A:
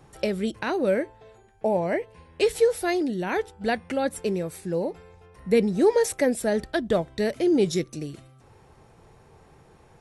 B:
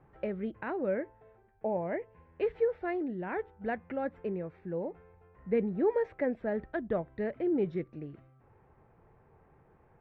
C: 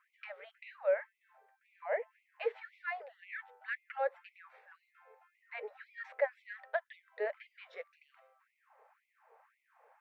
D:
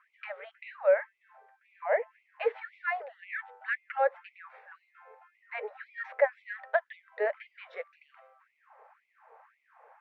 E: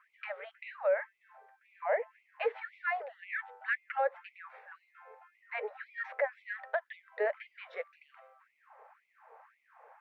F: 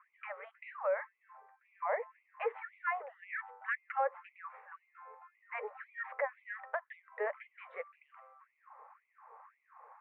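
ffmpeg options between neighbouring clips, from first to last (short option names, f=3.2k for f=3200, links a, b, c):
-af "lowpass=f=2.1k:w=0.5412,lowpass=f=2.1k:w=1.3066,volume=-8.5dB"
-af "afftfilt=real='re*gte(b*sr/1024,420*pow(2000/420,0.5+0.5*sin(2*PI*1.9*pts/sr)))':imag='im*gte(b*sr/1024,420*pow(2000/420,0.5+0.5*sin(2*PI*1.9*pts/sr)))':win_size=1024:overlap=0.75,volume=3dB"
-af "bandpass=f=1k:t=q:w=0.55:csg=0,volume=8.5dB"
-af "alimiter=limit=-21dB:level=0:latency=1:release=100"
-af "highpass=460,equalizer=f=650:t=q:w=4:g=-6,equalizer=f=1.1k:t=q:w=4:g=8,equalizer=f=1.6k:t=q:w=4:g=-5,lowpass=f=2.2k:w=0.5412,lowpass=f=2.2k:w=1.3066"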